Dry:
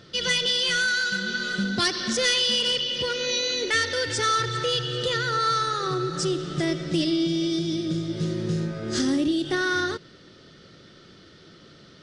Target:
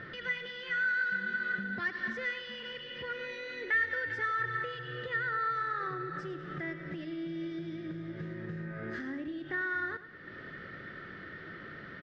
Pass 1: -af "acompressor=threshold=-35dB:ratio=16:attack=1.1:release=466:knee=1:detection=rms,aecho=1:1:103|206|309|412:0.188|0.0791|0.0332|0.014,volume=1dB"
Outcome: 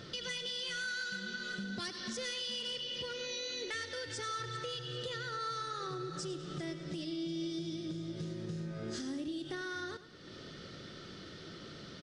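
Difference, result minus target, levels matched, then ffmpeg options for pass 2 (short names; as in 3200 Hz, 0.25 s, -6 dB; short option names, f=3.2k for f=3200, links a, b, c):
2000 Hz band -6.0 dB
-af "acompressor=threshold=-35dB:ratio=16:attack=1.1:release=466:knee=1:detection=rms,lowpass=f=1.8k:t=q:w=5.2,aecho=1:1:103|206|309|412:0.188|0.0791|0.0332|0.014,volume=1dB"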